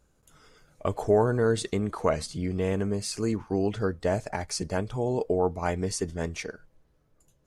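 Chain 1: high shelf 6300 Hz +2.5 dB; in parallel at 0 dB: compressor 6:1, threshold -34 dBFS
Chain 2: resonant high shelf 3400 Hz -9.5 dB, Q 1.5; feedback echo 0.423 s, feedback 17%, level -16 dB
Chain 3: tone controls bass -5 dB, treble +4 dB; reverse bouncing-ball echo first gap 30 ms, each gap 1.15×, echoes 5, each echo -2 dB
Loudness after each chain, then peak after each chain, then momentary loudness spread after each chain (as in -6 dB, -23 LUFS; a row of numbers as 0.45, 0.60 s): -26.0, -28.5, -25.5 LUFS; -10.0, -11.0, -9.0 dBFS; 7, 10, 8 LU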